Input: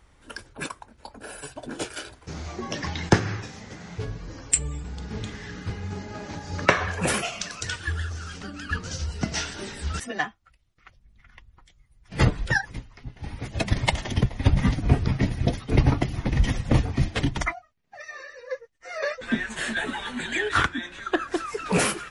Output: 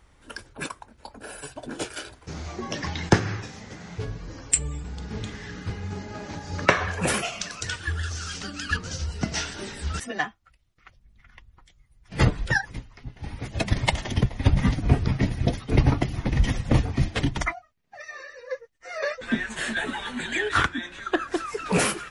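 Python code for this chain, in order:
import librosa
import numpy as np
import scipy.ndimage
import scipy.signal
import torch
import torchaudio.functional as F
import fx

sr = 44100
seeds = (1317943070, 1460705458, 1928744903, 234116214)

y = fx.peak_eq(x, sr, hz=6000.0, db=9.5, octaves=2.6, at=(8.03, 8.77))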